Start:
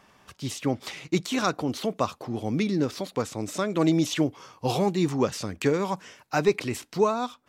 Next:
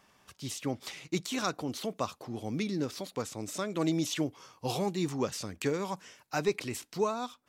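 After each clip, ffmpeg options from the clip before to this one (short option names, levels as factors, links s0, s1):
-af "highshelf=f=4000:g=6.5,volume=0.422"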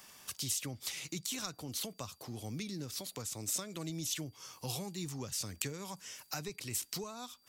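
-filter_complex "[0:a]acrossover=split=130[s0][s1];[s1]acompressor=threshold=0.00501:ratio=5[s2];[s0][s2]amix=inputs=2:normalize=0,crystalizer=i=4.5:c=0,aeval=exprs='val(0)+0.000316*sin(2*PI*4700*n/s)':c=same,volume=1.12"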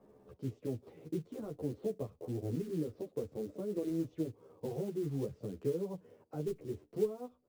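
-filter_complex "[0:a]lowpass=f=450:t=q:w=3.4,acrusher=bits=6:mode=log:mix=0:aa=0.000001,asplit=2[s0][s1];[s1]adelay=11.3,afreqshift=-0.58[s2];[s0][s2]amix=inputs=2:normalize=1,volume=1.78"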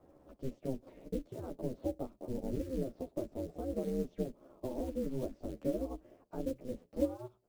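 -af "aeval=exprs='val(0)*sin(2*PI*130*n/s)':c=same,volume=1.41"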